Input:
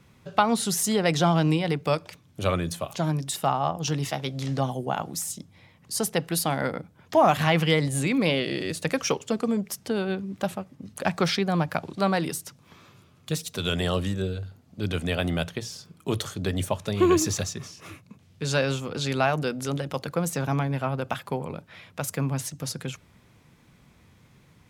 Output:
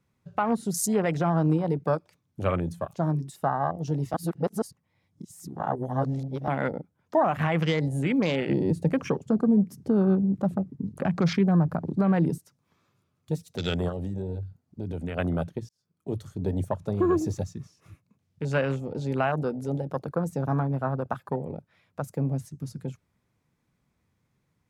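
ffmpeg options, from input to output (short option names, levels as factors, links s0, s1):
-filter_complex "[0:a]asettb=1/sr,asplit=3[s0][s1][s2];[s0]atrim=end=8.494[s3];[s1]atrim=start=8.49:end=12.38,asetpts=PTS-STARTPTS,afade=t=in:d=0.004:c=qsin,afade=t=out:st=3.886:d=0.004:c=qsin,equalizer=f=170:t=o:w=2.1:g=10.5[s4];[s2]atrim=start=12.376[s5];[s3][s4]acrossfade=d=0.004:c1=hsin:c2=qsin[s6];[s6][s5]acrossfade=d=0.004:c1=qsin:c2=hsin,asplit=3[s7][s8][s9];[s7]afade=t=out:st=13.88:d=0.02[s10];[s8]acompressor=threshold=0.0447:ratio=10:attack=3.2:release=140:knee=1:detection=peak,afade=t=in:st=13.88:d=0.02,afade=t=out:st=15.16:d=0.02[s11];[s9]afade=t=in:st=15.16:d=0.02[s12];[s10][s11][s12]amix=inputs=3:normalize=0,asplit=4[s13][s14][s15][s16];[s13]atrim=end=4.142[s17];[s14]atrim=start=4.138:end=6.482,asetpts=PTS-STARTPTS,areverse[s18];[s15]atrim=start=6.478:end=15.69,asetpts=PTS-STARTPTS,afade=t=out:st=9.208:d=0.004:c=hsin[s19];[s16]atrim=start=15.69,asetpts=PTS-STARTPTS,afade=t=in:d=0.67[s20];[s17][s18]acrossfade=d=0.004:c1=hsin:c2=hsin[s21];[s19][s20]concat=n=2:v=0:a=1[s22];[s21][s22]acrossfade=d=0.004:c1=hsin:c2=hsin,afwtdn=0.0282,equalizer=f=3100:t=o:w=0.9:g=-4.5,alimiter=limit=0.2:level=0:latency=1:release=125"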